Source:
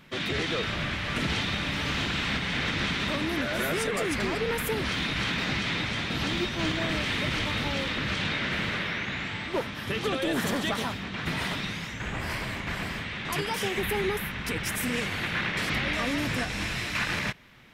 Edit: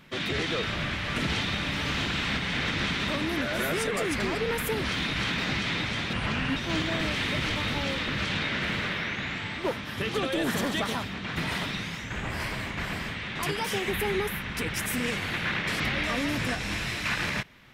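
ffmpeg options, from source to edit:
-filter_complex "[0:a]asplit=3[a][b][c];[a]atrim=end=6.134[d];[b]atrim=start=6.13:end=6.46,asetpts=PTS-STARTPTS,asetrate=33516,aresample=44100[e];[c]atrim=start=6.456[f];[d][e]acrossfade=d=0.004:c1=hsin:c2=hsin[g];[g][f]acrossfade=d=0.004:c1=hsin:c2=hsin"

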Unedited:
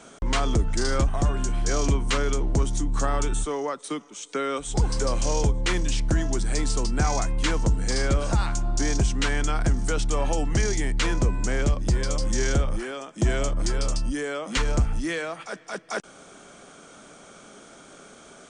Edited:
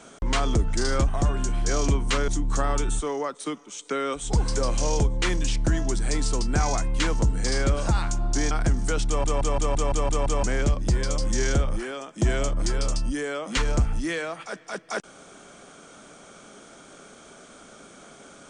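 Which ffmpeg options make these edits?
-filter_complex "[0:a]asplit=11[a][b][c][d][e][f][g][h][i][j][k];[a]atrim=end=2.282[l];[b]atrim=start=2.718:end=8.952[m];[c]atrim=start=9.508:end=10.242[n];[d]atrim=start=10.068:end=10.242[o];[e]atrim=start=10.068:end=10.242[p];[f]atrim=start=10.068:end=10.242[q];[g]atrim=start=10.068:end=10.242[r];[h]atrim=start=10.068:end=10.242[s];[i]atrim=start=10.068:end=10.242[t];[j]atrim=start=10.068:end=10.242[u];[k]atrim=start=11.428[v];[l][m]acrossfade=d=0.004:c1=hsin:c2=hsin[w];[w][n]acrossfade=d=0.004:c1=hsin:c2=hsin[x];[x][o]acrossfade=d=0.004:c1=hsin:c2=hsin[y];[y][p]acrossfade=d=0.004:c1=hsin:c2=hsin[z];[z][q]acrossfade=d=0.004:c1=hsin:c2=hsin[aa];[aa][r]acrossfade=d=0.004:c1=hsin:c2=hsin[ab];[ab][s]acrossfade=d=0.004:c1=hsin:c2=hsin[ac];[ac][t]acrossfade=d=0.004:c1=hsin:c2=hsin[ad];[ad][u]acrossfade=d=0.004:c1=hsin:c2=hsin[ae];[ae][v]acrossfade=d=0.004:c1=hsin:c2=hsin"

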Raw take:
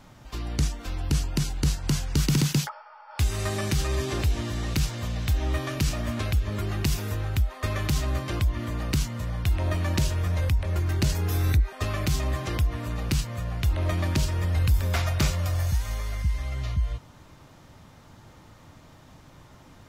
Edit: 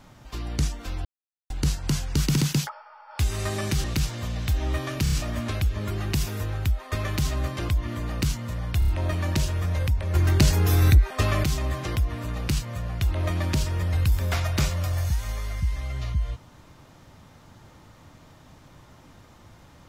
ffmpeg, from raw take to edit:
-filter_complex "[0:a]asplit=12[a][b][c][d][e][f][g][h][i][j][k][l];[a]atrim=end=1.05,asetpts=PTS-STARTPTS,afade=t=out:st=1.046:d=0.004:c=hsin[m];[b]atrim=start=1.05:end=1.5,asetpts=PTS-STARTPTS,volume=0[n];[c]atrim=start=1.5:end=3.842,asetpts=PTS-STARTPTS,afade=t=in:d=0.004:c=hsin[o];[d]atrim=start=4.638:end=5.862[p];[e]atrim=start=5.828:end=5.862[q];[f]atrim=start=5.828:end=5.862[r];[g]atrim=start=5.828:end=9.532[s];[h]atrim=start=9.498:end=9.532[t];[i]atrim=start=9.498:end=9.532[u];[j]atrim=start=9.498:end=10.772[v];[k]atrim=start=10.768:end=12.062,asetpts=PTS-STARTPTS,volume=5.5dB[w];[l]atrim=start=12.058[x];[m][n][o]concat=n=3:v=0:a=1[y];[y][p]acrossfade=d=0.004:c1=hsin:c2=hsin[z];[z][q]acrossfade=d=0.004:c1=hsin:c2=hsin[aa];[aa][r]acrossfade=d=0.004:c1=hsin:c2=hsin[ab];[ab][s]acrossfade=d=0.004:c1=hsin:c2=hsin[ac];[ac][t]acrossfade=d=0.004:c1=hsin:c2=hsin[ad];[ad][u]acrossfade=d=0.004:c1=hsin:c2=hsin[ae];[ae][v]acrossfade=d=0.004:c1=hsin:c2=hsin[af];[af][w]acrossfade=d=0.004:c1=hsin:c2=hsin[ag];[ag][x]acrossfade=d=0.004:c1=hsin:c2=hsin"

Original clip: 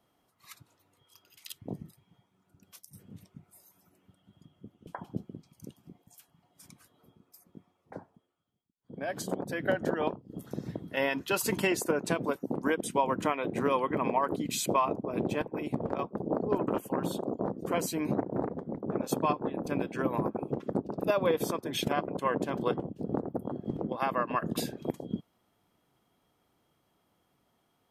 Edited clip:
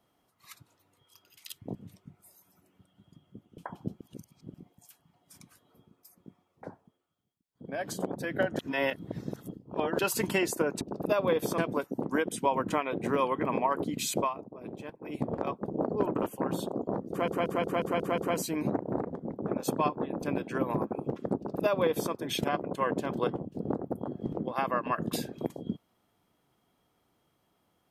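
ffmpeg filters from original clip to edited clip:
-filter_complex "[0:a]asplit=16[a][b][c][d][e][f][g][h][i][j][k][l][m][n][o][p];[a]atrim=end=1.752[q];[b]atrim=start=3.038:end=5.302[r];[c]atrim=start=5.298:end=5.832,asetpts=PTS-STARTPTS,areverse[s];[d]atrim=start=5.828:end=9.882[t];[e]atrim=start=9.878:end=11.282,asetpts=PTS-STARTPTS,areverse[u];[f]atrim=start=11.278:end=12.102[v];[g]atrim=start=20.788:end=21.562[w];[h]atrim=start=12.098:end=14.86,asetpts=PTS-STARTPTS,afade=t=out:st=2.612:d=0.15:silence=0.281838[x];[i]atrim=start=14.86:end=15.54,asetpts=PTS-STARTPTS,volume=-11dB[y];[j]atrim=start=15.54:end=17.802,asetpts=PTS-STARTPTS,afade=t=in:d=0.15:silence=0.281838[z];[k]atrim=start=17.618:end=17.802[aa];[l]atrim=start=17.618:end=17.802[ab];[m]atrim=start=17.618:end=17.802[ac];[n]atrim=start=17.618:end=17.802[ad];[o]atrim=start=17.618:end=17.802[ae];[p]atrim=start=17.618[af];[q][r]acrossfade=d=0.004:c1=hsin:c2=hsin[ag];[ag][s]acrossfade=d=0.004:c1=hsin:c2=hsin[ah];[ah][t]acrossfade=d=0.004:c1=hsin:c2=hsin[ai];[ai][u]acrossfade=d=0.004:c1=hsin:c2=hsin[aj];[aj][v]acrossfade=d=0.004:c1=hsin:c2=hsin[ak];[ak][w]acrossfade=d=0.004:c1=hsin:c2=hsin[al];[x][y][z]concat=n=3:v=0:a=1[am];[al][am]acrossfade=d=0.004:c1=hsin:c2=hsin[an];[an][aa]acrossfade=d=0.004:c1=hsin:c2=hsin[ao];[ao][ab]acrossfade=d=0.004:c1=hsin:c2=hsin[ap];[ap][ac]acrossfade=d=0.004:c1=hsin:c2=hsin[aq];[aq][ad]acrossfade=d=0.004:c1=hsin:c2=hsin[ar];[ar][ae]acrossfade=d=0.004:c1=hsin:c2=hsin[as];[as][af]acrossfade=d=0.004:c1=hsin:c2=hsin"

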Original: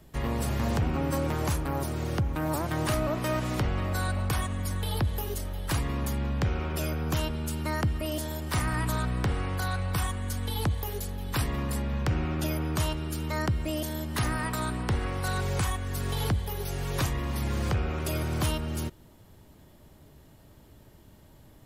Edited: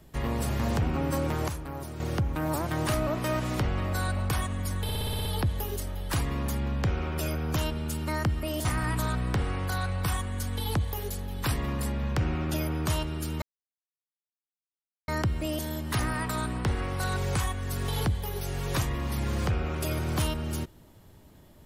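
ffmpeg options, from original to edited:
-filter_complex "[0:a]asplit=12[a][b][c][d][e][f][g][h][i][j][k][l];[a]atrim=end=1.482[m];[b]atrim=start=1.478:end=2.002,asetpts=PTS-STARTPTS,volume=-7dB[n];[c]atrim=start=1.998:end=4.892[o];[d]atrim=start=4.828:end=4.892[p];[e]atrim=start=4.828:end=4.892[q];[f]atrim=start=4.828:end=4.892[r];[g]atrim=start=4.828:end=4.892[s];[h]atrim=start=4.828:end=4.892[t];[i]atrim=start=4.828:end=4.892[u];[j]atrim=start=4.828:end=8.232[v];[k]atrim=start=8.548:end=13.32,asetpts=PTS-STARTPTS,afade=t=out:st=4.768:d=0.004:c=hsin,apad=pad_dur=1.66[w];[l]atrim=start=13.32,asetpts=PTS-STARTPTS,afade=t=in:d=0.004:c=hsin[x];[m][n]acrossfade=d=0.004:c1=hsin:c2=hsin[y];[y][o]acrossfade=d=0.004:c1=hsin:c2=hsin[z];[z][p]acrossfade=d=0.004:c1=hsin:c2=hsin[aa];[aa][q]acrossfade=d=0.004:c1=hsin:c2=hsin[ab];[ab][r]acrossfade=d=0.004:c1=hsin:c2=hsin[ac];[ac][s]acrossfade=d=0.004:c1=hsin:c2=hsin[ad];[ad][t]acrossfade=d=0.004:c1=hsin:c2=hsin[ae];[ae][u]acrossfade=d=0.004:c1=hsin:c2=hsin[af];[af][v]acrossfade=d=0.004:c1=hsin:c2=hsin[ag];[w][x]concat=n=2:v=0:a=1[ah];[ag][ah]acrossfade=d=0.004:c1=hsin:c2=hsin"

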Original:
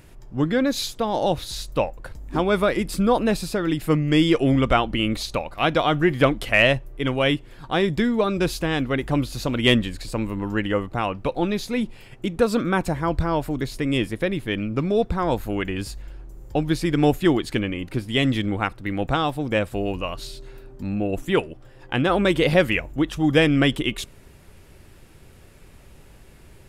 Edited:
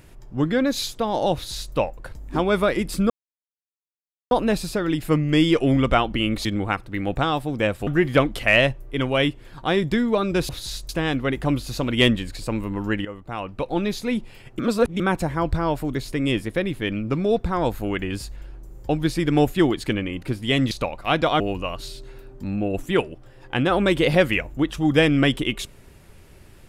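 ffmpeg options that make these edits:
-filter_complex "[0:a]asplit=11[a][b][c][d][e][f][g][h][i][j][k];[a]atrim=end=3.1,asetpts=PTS-STARTPTS,afade=t=out:st=3.096:d=0.004:c=hsin,apad=pad_dur=1.21[l];[b]atrim=start=3.1:end=5.242,asetpts=PTS-STARTPTS,afade=t=in:d=0.004:c=hsin[m];[c]atrim=start=18.368:end=19.792[n];[d]atrim=start=5.928:end=8.552[o];[e]atrim=start=1.338:end=1.742[p];[f]atrim=start=8.548:end=10.71,asetpts=PTS-STARTPTS,afade=t=out:st=2.158:d=0.004:c=hsin:silence=0.177828[q];[g]atrim=start=10.71:end=12.252,asetpts=PTS-STARTPTS,afade=t=in:d=0.79:silence=0.177828[r];[h]atrim=start=12.248:end=12.662,asetpts=PTS-STARTPTS,areverse[s];[i]atrim=start=12.658:end=18.372[t];[j]atrim=start=5.238:end=5.932[u];[k]atrim=start=19.788[v];[l][m]concat=n=2:v=0:a=1[w];[w][n]acrossfade=d=0.004:c1=hsin:c2=hsin[x];[x][o]acrossfade=d=0.004:c1=hsin:c2=hsin[y];[y][p]acrossfade=d=0.004:c1=hsin:c2=hsin[z];[q][r]concat=n=2:v=0:a=1[aa];[z][aa]acrossfade=d=0.004:c1=hsin:c2=hsin[ab];[ab][s]acrossfade=d=0.004:c1=hsin:c2=hsin[ac];[ac][t]acrossfade=d=0.004:c1=hsin:c2=hsin[ad];[ad][u]acrossfade=d=0.004:c1=hsin:c2=hsin[ae];[ae][v]acrossfade=d=0.004:c1=hsin:c2=hsin"

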